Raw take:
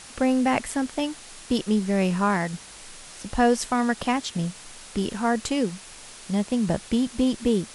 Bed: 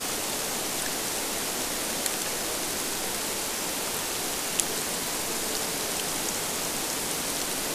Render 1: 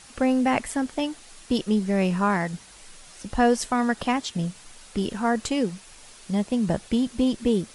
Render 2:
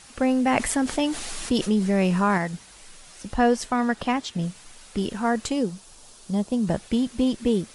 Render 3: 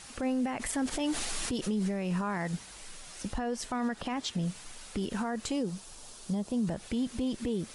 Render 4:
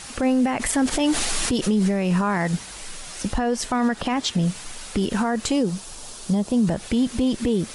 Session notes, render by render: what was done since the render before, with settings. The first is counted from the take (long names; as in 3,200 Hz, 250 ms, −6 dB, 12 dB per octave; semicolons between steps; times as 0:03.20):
broadband denoise 6 dB, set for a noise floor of −44 dBFS
0:00.47–0:02.38: envelope flattener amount 50%; 0:03.34–0:04.42: high-shelf EQ 7,500 Hz −7 dB; 0:05.52–0:06.67: parametric band 2,100 Hz −9 dB 0.99 octaves
downward compressor, threshold −24 dBFS, peak gain reduction 9.5 dB; brickwall limiter −24 dBFS, peak gain reduction 11 dB
level +10.5 dB